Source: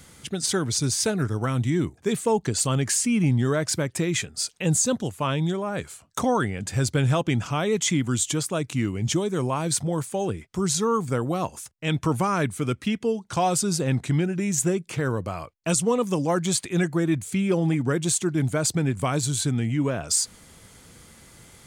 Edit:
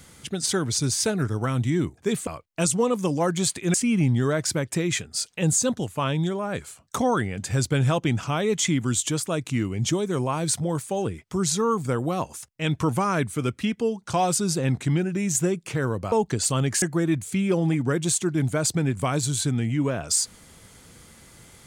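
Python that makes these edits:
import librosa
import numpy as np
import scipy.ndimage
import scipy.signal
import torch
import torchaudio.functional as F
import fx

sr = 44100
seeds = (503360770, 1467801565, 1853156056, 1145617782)

y = fx.edit(x, sr, fx.swap(start_s=2.27, length_s=0.7, other_s=15.35, other_length_s=1.47), tone=tone)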